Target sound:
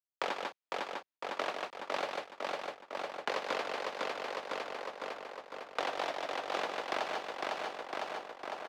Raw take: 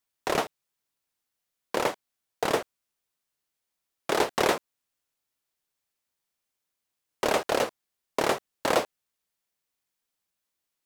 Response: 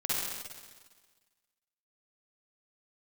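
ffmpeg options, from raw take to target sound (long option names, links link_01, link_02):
-filter_complex "[0:a]aemphasis=mode=reproduction:type=50fm,aecho=1:1:630|1260|1890|2520|3150|3780|4410:0.447|0.246|0.135|0.0743|0.0409|0.0225|0.0124,agate=range=-33dB:threshold=-58dB:ratio=3:detection=peak,aecho=1:1:183:0.501,asetrate=55125,aresample=44100,acrossover=split=150|2200|6100[link_01][link_02][link_03][link_04];[link_01]acompressor=threshold=-60dB:ratio=4[link_05];[link_02]acompressor=threshold=-37dB:ratio=4[link_06];[link_03]acompressor=threshold=-44dB:ratio=4[link_07];[link_04]acompressor=threshold=-56dB:ratio=4[link_08];[link_05][link_06][link_07][link_08]amix=inputs=4:normalize=0,acrossover=split=210 5900:gain=0.224 1 0.251[link_09][link_10][link_11];[link_09][link_10][link_11]amix=inputs=3:normalize=0,asplit=2[link_12][link_13];[link_13]aeval=exprs='sgn(val(0))*max(abs(val(0))-0.00141,0)':channel_layout=same,volume=-3.5dB[link_14];[link_12][link_14]amix=inputs=2:normalize=0,volume=-2.5dB"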